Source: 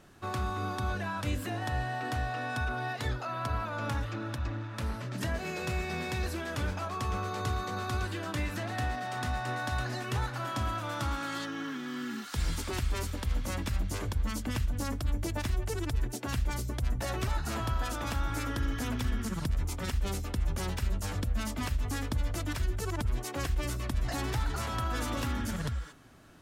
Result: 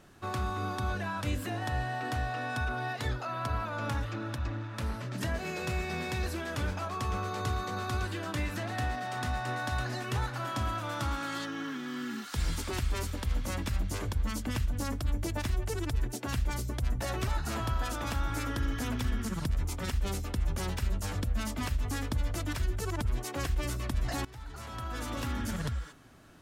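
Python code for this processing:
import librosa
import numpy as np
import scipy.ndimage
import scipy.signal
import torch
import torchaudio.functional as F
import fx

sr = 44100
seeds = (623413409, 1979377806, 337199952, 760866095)

y = fx.edit(x, sr, fx.fade_in_from(start_s=24.25, length_s=1.27, floor_db=-20.5), tone=tone)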